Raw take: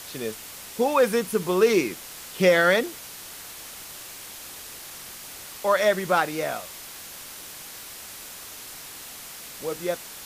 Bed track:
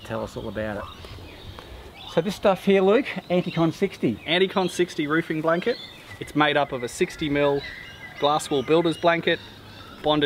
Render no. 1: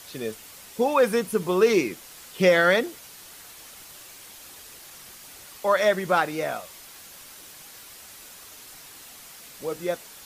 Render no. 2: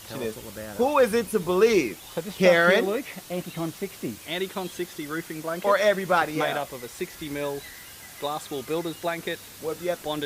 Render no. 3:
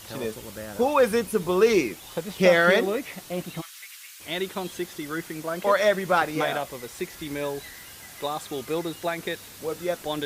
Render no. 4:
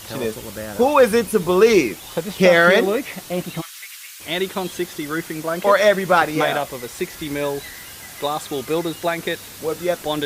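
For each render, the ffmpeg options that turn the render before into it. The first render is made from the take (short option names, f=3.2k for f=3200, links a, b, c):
-af "afftdn=nr=6:nf=-41"
-filter_complex "[1:a]volume=-9dB[a];[0:a][a]amix=inputs=2:normalize=0"
-filter_complex "[0:a]asplit=3[a][b][c];[a]afade=t=out:st=3.6:d=0.02[d];[b]highpass=f=1.4k:w=0.5412,highpass=f=1.4k:w=1.3066,afade=t=in:st=3.6:d=0.02,afade=t=out:st=4.19:d=0.02[e];[c]afade=t=in:st=4.19:d=0.02[f];[d][e][f]amix=inputs=3:normalize=0"
-af "volume=6.5dB,alimiter=limit=-3dB:level=0:latency=1"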